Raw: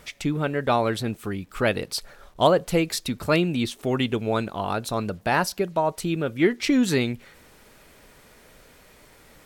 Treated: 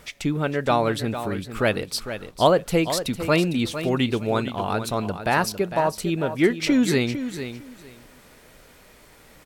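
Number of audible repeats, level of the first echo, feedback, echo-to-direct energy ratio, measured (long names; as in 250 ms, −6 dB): 2, −10.5 dB, 19%, −10.5 dB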